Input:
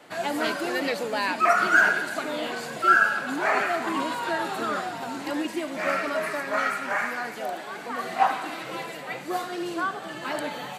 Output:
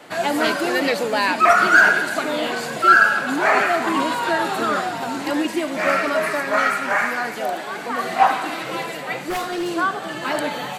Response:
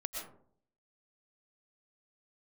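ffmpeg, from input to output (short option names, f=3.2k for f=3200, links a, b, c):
-filter_complex "[0:a]asettb=1/sr,asplit=3[a][b][c];[a]atrim=end=9.244[d];[b]atrim=start=9.24:end=9.69,asetpts=PTS-STARTPTS,afade=t=in:d=0.004:c=qsin,afade=t=out:st=0.446:d=0.004:c=qsin,aeval=exprs='0.0501*(abs(mod(val(0)/0.0501+3,4)-2)-1)':c=same[e];[c]atrim=start=9.686[f];[d][e]acrossfade=d=0.004:c1=hsin:c2=qsin[g];[g][f]acrossfade=d=0.004:c1=qsin:c2=hsin,acontrast=84"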